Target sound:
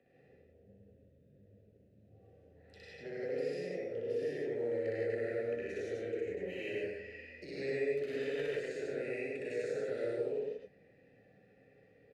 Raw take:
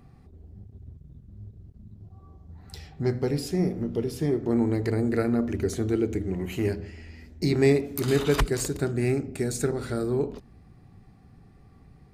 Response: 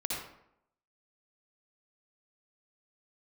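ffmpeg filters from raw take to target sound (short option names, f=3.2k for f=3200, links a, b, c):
-filter_complex "[0:a]acrossover=split=140|510|6700[a][b][c][d];[a]acompressor=threshold=-39dB:ratio=4[e];[b]acompressor=threshold=-38dB:ratio=4[f];[c]acompressor=threshold=-39dB:ratio=4[g];[d]acompressor=threshold=-48dB:ratio=4[h];[e][f][g][h]amix=inputs=4:normalize=0,acrossover=split=600|2700[i][j][k];[j]acrusher=bits=3:mode=log:mix=0:aa=0.000001[l];[i][l][k]amix=inputs=3:normalize=0,asplit=3[m][n][o];[m]bandpass=f=530:t=q:w=8,volume=0dB[p];[n]bandpass=f=1.84k:t=q:w=8,volume=-6dB[q];[o]bandpass=f=2.48k:t=q:w=8,volume=-9dB[r];[p][q][r]amix=inputs=3:normalize=0,aecho=1:1:61.22|145.8:1|0.891[s];[1:a]atrim=start_sample=2205,atrim=end_sample=3528,asetrate=25137,aresample=44100[t];[s][t]afir=irnorm=-1:irlink=0"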